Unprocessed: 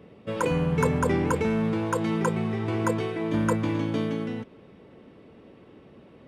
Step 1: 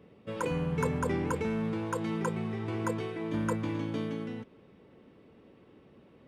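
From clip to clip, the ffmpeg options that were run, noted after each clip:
-af "equalizer=f=650:t=o:w=0.27:g=-2.5,volume=0.473"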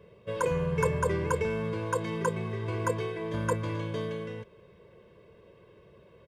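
-af "aecho=1:1:1.9:0.94"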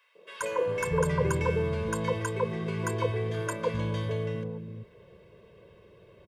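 -filter_complex "[0:a]acrossover=split=280|1100[s0][s1][s2];[s1]adelay=150[s3];[s0]adelay=400[s4];[s4][s3][s2]amix=inputs=3:normalize=0,volume=1.33"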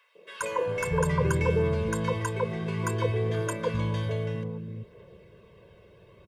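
-af "aphaser=in_gain=1:out_gain=1:delay=1.5:decay=0.26:speed=0.6:type=triangular,volume=1.12"

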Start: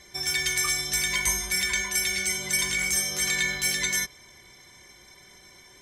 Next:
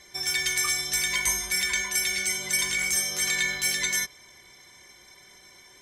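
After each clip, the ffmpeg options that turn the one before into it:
-af "lowshelf=f=290:g=-6"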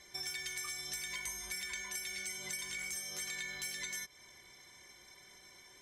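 -af "acompressor=threshold=0.0224:ratio=6,volume=0.501"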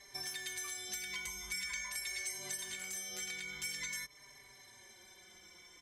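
-filter_complex "[0:a]asplit=2[s0][s1];[s1]adelay=4.6,afreqshift=-0.46[s2];[s0][s2]amix=inputs=2:normalize=1,volume=1.41"

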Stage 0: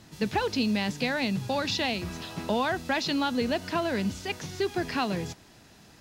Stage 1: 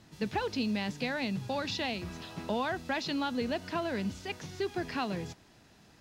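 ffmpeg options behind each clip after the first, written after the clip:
-af "highshelf=f=6600:g=-5.5,volume=0.562"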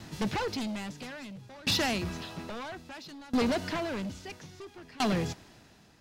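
-filter_complex "[0:a]asplit=2[s0][s1];[s1]aeval=exprs='0.106*sin(PI/2*3.98*val(0)/0.106)':c=same,volume=0.501[s2];[s0][s2]amix=inputs=2:normalize=0,aeval=exprs='val(0)*pow(10,-24*if(lt(mod(0.6*n/s,1),2*abs(0.6)/1000),1-mod(0.6*n/s,1)/(2*abs(0.6)/1000),(mod(0.6*n/s,1)-2*abs(0.6)/1000)/(1-2*abs(0.6)/1000))/20)':c=same"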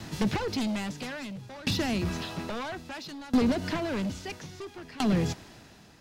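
-filter_complex "[0:a]acrossover=split=370[s0][s1];[s1]acompressor=threshold=0.0158:ratio=6[s2];[s0][s2]amix=inputs=2:normalize=0,volume=1.78"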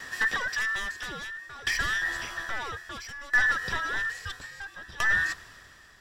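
-af "afftfilt=real='real(if(between(b,1,1012),(2*floor((b-1)/92)+1)*92-b,b),0)':imag='imag(if(between(b,1,1012),(2*floor((b-1)/92)+1)*92-b,b),0)*if(between(b,1,1012),-1,1)':win_size=2048:overlap=0.75,asubboost=boost=3.5:cutoff=130"

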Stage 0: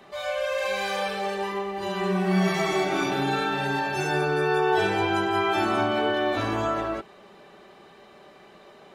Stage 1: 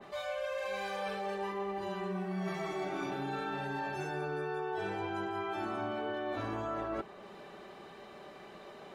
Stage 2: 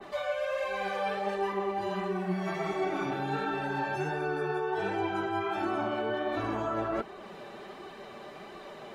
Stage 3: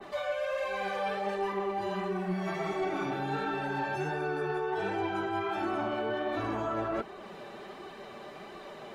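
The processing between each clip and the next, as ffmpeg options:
-af "areverse,acompressor=threshold=0.0224:ratio=12,areverse,adynamicequalizer=threshold=0.002:dfrequency=2000:dqfactor=0.7:tfrequency=2000:tqfactor=0.7:attack=5:release=100:ratio=0.375:range=3:mode=cutabove:tftype=highshelf"
-filter_complex "[0:a]acrossover=split=600|3100[s0][s1][s2];[s2]alimiter=level_in=21.1:limit=0.0631:level=0:latency=1:release=297,volume=0.0473[s3];[s0][s1][s3]amix=inputs=3:normalize=0,flanger=delay=2.6:depth=6.3:regen=40:speed=1.4:shape=sinusoidal,volume=2.82"
-af "asoftclip=type=tanh:threshold=0.0794"

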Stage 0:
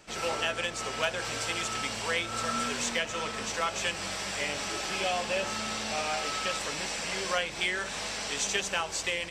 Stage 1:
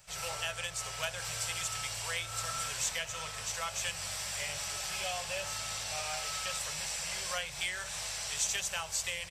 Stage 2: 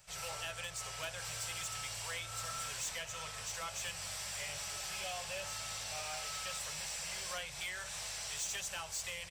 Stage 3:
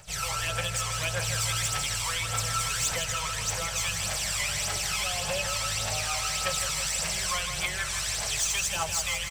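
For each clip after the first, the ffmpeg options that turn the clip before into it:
-af "firequalizer=gain_entry='entry(150,0);entry(230,-26);entry(570,-7);entry(13000,11)':delay=0.05:min_phase=1,volume=0.841"
-af "asoftclip=type=tanh:threshold=0.0282,volume=0.708"
-af "aphaser=in_gain=1:out_gain=1:delay=1:decay=0.62:speed=1.7:type=triangular,aecho=1:1:160|320|480|640|800|960|1120|1280:0.398|0.239|0.143|0.086|0.0516|0.031|0.0186|0.0111,volume=2.82"

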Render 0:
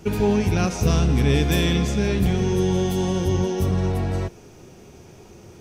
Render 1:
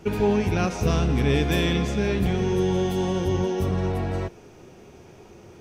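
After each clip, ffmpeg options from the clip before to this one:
-af "bass=f=250:g=-4,treble=f=4000:g=-7"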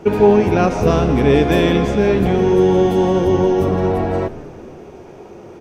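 -filter_complex "[0:a]equalizer=f=550:w=0.33:g=12,asplit=7[s0][s1][s2][s3][s4][s5][s6];[s1]adelay=163,afreqshift=-77,volume=0.141[s7];[s2]adelay=326,afreqshift=-154,volume=0.0891[s8];[s3]adelay=489,afreqshift=-231,volume=0.0562[s9];[s4]adelay=652,afreqshift=-308,volume=0.0355[s10];[s5]adelay=815,afreqshift=-385,volume=0.0221[s11];[s6]adelay=978,afreqshift=-462,volume=0.014[s12];[s0][s7][s8][s9][s10][s11][s12]amix=inputs=7:normalize=0"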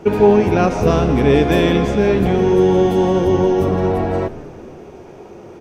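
-af anull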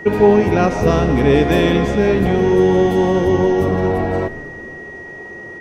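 -af "aeval=exprs='val(0)+0.0251*sin(2*PI*1900*n/s)':c=same"

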